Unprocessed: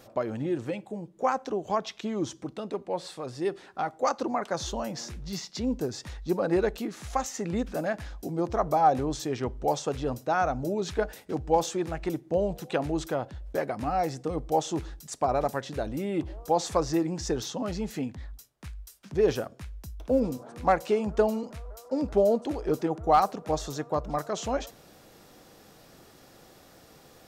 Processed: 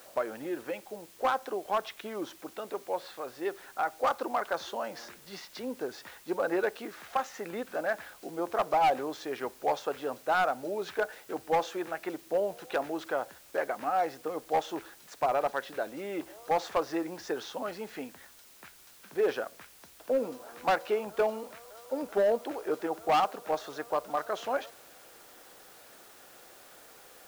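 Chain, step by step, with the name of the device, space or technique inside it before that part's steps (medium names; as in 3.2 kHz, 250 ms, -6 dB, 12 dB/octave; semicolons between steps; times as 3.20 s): drive-through speaker (band-pass 450–3200 Hz; peaking EQ 1.5 kHz +5 dB 0.38 oct; hard clipper -20.5 dBFS, distortion -12 dB; white noise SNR 23 dB)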